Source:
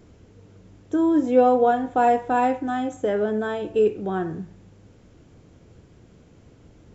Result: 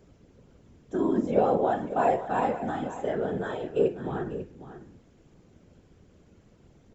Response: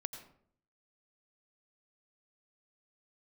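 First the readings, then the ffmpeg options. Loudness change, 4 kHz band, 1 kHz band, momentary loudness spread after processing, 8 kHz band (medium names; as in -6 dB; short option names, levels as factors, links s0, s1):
-6.0 dB, -5.5 dB, -6.5 dB, 12 LU, no reading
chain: -af "afftfilt=real='hypot(re,im)*cos(2*PI*random(0))':imag='hypot(re,im)*sin(2*PI*random(1))':win_size=512:overlap=0.75,aecho=1:1:545:0.224"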